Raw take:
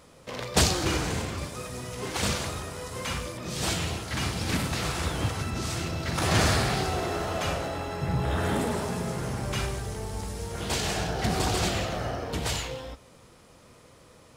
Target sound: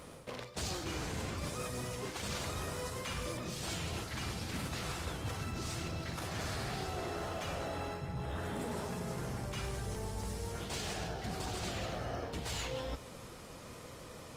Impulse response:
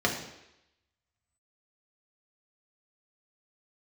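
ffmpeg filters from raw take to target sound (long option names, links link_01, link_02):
-af "areverse,acompressor=threshold=-40dB:ratio=16,areverse,volume=4.5dB" -ar 48000 -c:a libopus -b:a 32k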